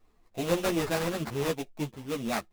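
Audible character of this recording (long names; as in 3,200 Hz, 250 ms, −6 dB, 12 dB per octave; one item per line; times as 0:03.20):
aliases and images of a low sample rate 3,100 Hz, jitter 20%
a shimmering, thickened sound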